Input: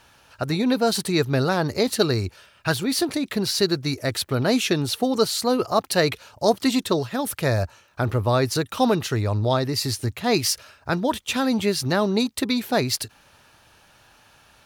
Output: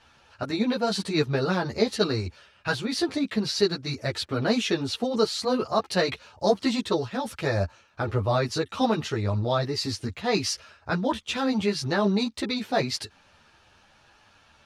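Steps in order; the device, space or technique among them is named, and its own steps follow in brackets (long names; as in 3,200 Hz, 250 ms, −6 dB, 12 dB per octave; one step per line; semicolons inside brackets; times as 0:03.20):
string-machine ensemble chorus (string-ensemble chorus; low-pass filter 6,100 Hz 12 dB per octave)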